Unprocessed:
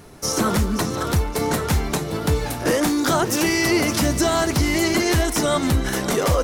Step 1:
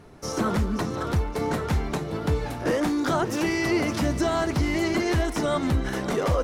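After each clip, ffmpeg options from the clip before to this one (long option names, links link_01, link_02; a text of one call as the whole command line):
ffmpeg -i in.wav -af "lowpass=frequency=2500:poles=1,volume=-4dB" out.wav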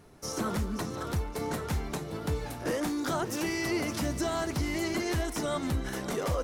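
ffmpeg -i in.wav -af "highshelf=frequency=6200:gain=10.5,volume=-7dB" out.wav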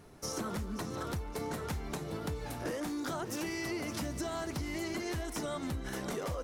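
ffmpeg -i in.wav -af "acompressor=threshold=-34dB:ratio=6" out.wav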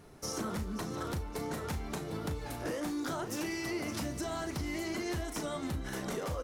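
ffmpeg -i in.wav -filter_complex "[0:a]asplit=2[link_01][link_02];[link_02]adelay=37,volume=-9.5dB[link_03];[link_01][link_03]amix=inputs=2:normalize=0" out.wav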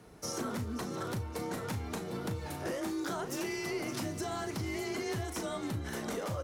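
ffmpeg -i in.wav -af "afreqshift=28" out.wav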